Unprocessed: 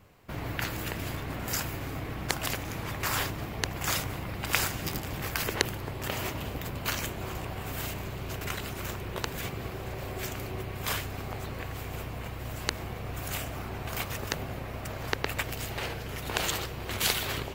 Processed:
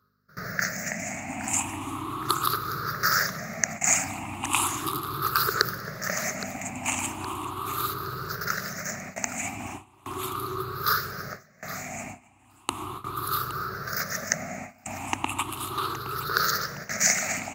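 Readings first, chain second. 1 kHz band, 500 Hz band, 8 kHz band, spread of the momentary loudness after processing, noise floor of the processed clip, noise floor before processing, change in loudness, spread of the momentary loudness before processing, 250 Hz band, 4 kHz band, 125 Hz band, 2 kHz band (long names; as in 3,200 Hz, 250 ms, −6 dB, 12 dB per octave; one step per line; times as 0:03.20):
+8.0 dB, 0.0 dB, +9.5 dB, 13 LU, −57 dBFS, −39 dBFS, +5.0 dB, 8 LU, +2.0 dB, +1.5 dB, −3.5 dB, +5.0 dB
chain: rippled gain that drifts along the octave scale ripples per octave 0.6, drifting +0.37 Hz, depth 24 dB
soft clipping −1 dBFS, distortion −27 dB
parametric band 6,500 Hz +13.5 dB 0.43 octaves
on a send: repeating echo 817 ms, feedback 46%, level −15.5 dB
on the sum: reversed playback
upward compression, threshold −36 dBFS
reversed playback
thirty-one-band graphic EQ 500 Hz −11 dB, 1,250 Hz +12 dB, 3,150 Hz −8 dB, 6,300 Hz −6 dB
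mains hum 50 Hz, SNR 15 dB
noise gate with hold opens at −19 dBFS
high-pass filter 140 Hz 12 dB per octave
level −2.5 dB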